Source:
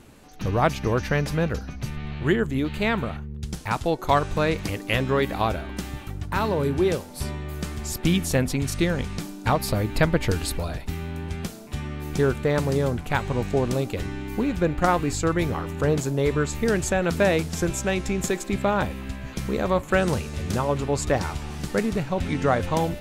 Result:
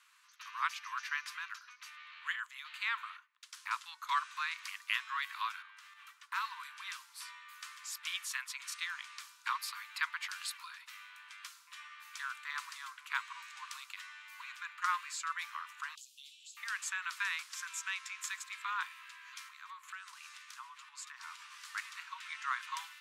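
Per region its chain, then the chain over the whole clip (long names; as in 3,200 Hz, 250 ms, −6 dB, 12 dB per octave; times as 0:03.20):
0:05.62–0:06.07: high-shelf EQ 4,000 Hz −8.5 dB + downward compressor 4 to 1, threshold −33 dBFS
0:15.95–0:16.57: Butterworth high-pass 2,800 Hz 72 dB per octave + downward compressor 3 to 1, threshold −41 dBFS
0:19.43–0:21.65: mains-hum notches 60/120/180/240/300/360/420/480 Hz + downward compressor 10 to 1, threshold −28 dBFS
whole clip: Butterworth high-pass 1,000 Hz 96 dB per octave; high-shelf EQ 9,700 Hz −9.5 dB; level −7 dB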